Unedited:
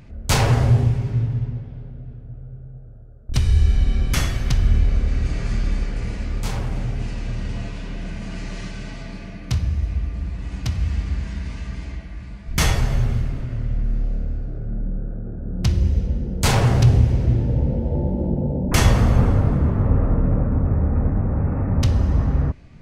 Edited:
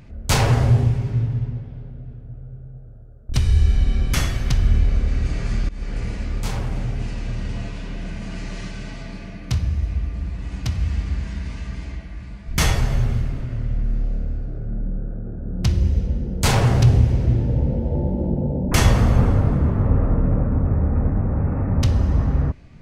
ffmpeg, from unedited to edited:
ffmpeg -i in.wav -filter_complex "[0:a]asplit=2[link_01][link_02];[link_01]atrim=end=5.69,asetpts=PTS-STARTPTS,afade=type=out:start_time=5.686:duration=0.004:curve=hsin:silence=0.0891251[link_03];[link_02]atrim=start=5.69,asetpts=PTS-STARTPTS,afade=type=in:duration=0.26:silence=0.0891251[link_04];[link_03][link_04]concat=n=2:v=0:a=1" out.wav

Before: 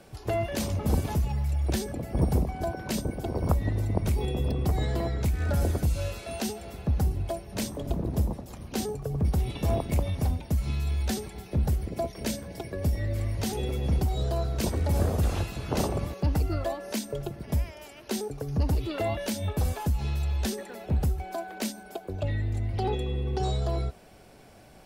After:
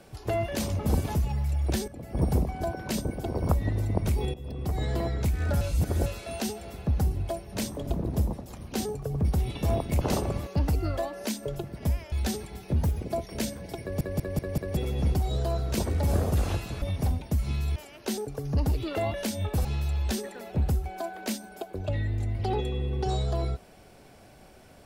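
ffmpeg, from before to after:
ffmpeg -i in.wav -filter_complex "[0:a]asplit=17[link_01][link_02][link_03][link_04][link_05][link_06][link_07][link_08][link_09][link_10][link_11][link_12][link_13][link_14][link_15][link_16][link_17];[link_01]atrim=end=1.88,asetpts=PTS-STARTPTS,afade=type=out:start_time=1.876:duration=0.004:curve=hsin:silence=0.237137[link_18];[link_02]atrim=start=1.88:end=4.34,asetpts=PTS-STARTPTS,afade=type=in:duration=0.41:silence=0.237137,afade=type=out:start_time=2.456:duration=0.004:curve=hsin:silence=0.125893[link_19];[link_03]atrim=start=4.34:end=5.612,asetpts=PTS-STARTPTS,afade=type=in:duration=0.6:silence=0.125893[link_20];[link_04]atrim=start=5.608:end=6.062,asetpts=PTS-STARTPTS,areverse[link_21];[link_05]atrim=start=6.058:end=10.012[link_22];[link_06]atrim=start=15.678:end=17.792[link_23];[link_07]atrim=start=10.948:end=11.594[link_24];[link_08]atrim=start=11.59:end=11.91,asetpts=PTS-STARTPTS,asetrate=48951,aresample=44100[link_25];[link_09]atrim=start=11.906:end=12.872[link_26];[link_10]atrim=start=12.678:end=12.872[link_27];[link_11]atrim=start=12.678:end=12.872[link_28];[link_12]atrim=start=12.678:end=12.872[link_29];[link_13]atrim=start=12.678:end=12.872[link_30];[link_14]atrim=start=13.628:end=15.682[link_31];[link_15]atrim=start=10.008:end=10.952[link_32];[link_16]atrim=start=17.788:end=19.682[link_33];[link_17]atrim=start=19.988[link_34];[link_18][link_19][link_20]concat=n=3:v=0:a=1[link_35];[link_35][link_21]acrossfade=duration=0.004:curve1=hsin:curve2=hsin[link_36];[link_36][link_22]acrossfade=duration=0.004:curve1=hsin:curve2=hsin[link_37];[link_37][link_23]acrossfade=duration=0.004:curve1=hsin:curve2=hsin[link_38];[link_38][link_24]acrossfade=duration=0.004:curve1=hsin:curve2=hsin[link_39];[link_39][link_25]acrossfade=duration=0.004:curve1=hsin:curve2=hsin[link_40];[link_40][link_26]acrossfade=duration=0.004:curve1=hsin:curve2=hsin[link_41];[link_41][link_27]acrossfade=duration=0.004:curve1=hsin:curve2=hsin[link_42];[link_42][link_28]acrossfade=duration=0.004:curve1=hsin:curve2=hsin[link_43];[link_43][link_29]acrossfade=duration=0.004:curve1=hsin:curve2=hsin[link_44];[link_44][link_30]acrossfade=duration=0.004:curve1=hsin:curve2=hsin[link_45];[link_45][link_31]acrossfade=duration=0.004:curve1=hsin:curve2=hsin[link_46];[link_46][link_32]acrossfade=duration=0.004:curve1=hsin:curve2=hsin[link_47];[link_47][link_33]acrossfade=duration=0.004:curve1=hsin:curve2=hsin[link_48];[link_48][link_34]acrossfade=duration=0.004:curve1=hsin:curve2=hsin" out.wav

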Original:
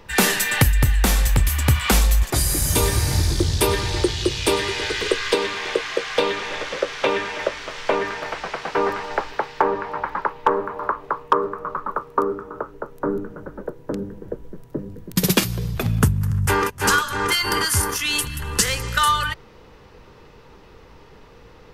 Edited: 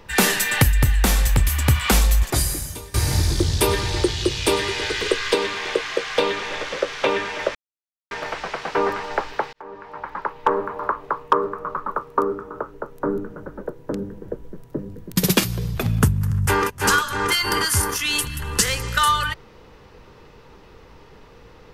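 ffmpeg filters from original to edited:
ffmpeg -i in.wav -filter_complex "[0:a]asplit=5[link_01][link_02][link_03][link_04][link_05];[link_01]atrim=end=2.94,asetpts=PTS-STARTPTS,afade=type=out:start_time=2.4:duration=0.54:curve=qua:silence=0.0749894[link_06];[link_02]atrim=start=2.94:end=7.55,asetpts=PTS-STARTPTS,afade=type=in:duration=0.004:curve=hsin:silence=0.0749894,afade=type=out:start_time=4.606:duration=0.004:curve=hsin[link_07];[link_03]atrim=start=7.55:end=8.11,asetpts=PTS-STARTPTS,volume=0[link_08];[link_04]atrim=start=8.11:end=9.53,asetpts=PTS-STARTPTS,afade=type=in:duration=0.004:curve=hsin,afade=type=out:start_time=1.416:duration=0.004:curve=hsin[link_09];[link_05]atrim=start=9.53,asetpts=PTS-STARTPTS,afade=type=in:duration=1.06[link_10];[link_06][link_07][link_08][link_09][link_10]concat=n=5:v=0:a=1" out.wav

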